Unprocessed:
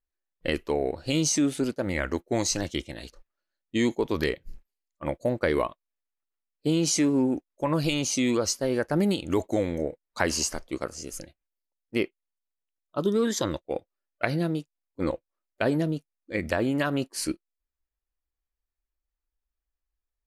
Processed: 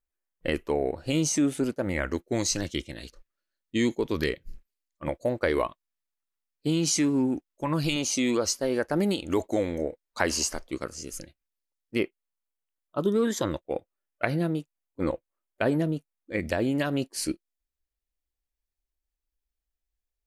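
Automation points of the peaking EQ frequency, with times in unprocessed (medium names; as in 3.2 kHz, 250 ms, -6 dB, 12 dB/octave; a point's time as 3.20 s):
peaking EQ -6 dB 0.92 oct
4.3 kHz
from 2.11 s 780 Hz
from 5.08 s 170 Hz
from 5.66 s 550 Hz
from 7.96 s 130 Hz
from 10.71 s 730 Hz
from 11.99 s 4.9 kHz
from 16.40 s 1.2 kHz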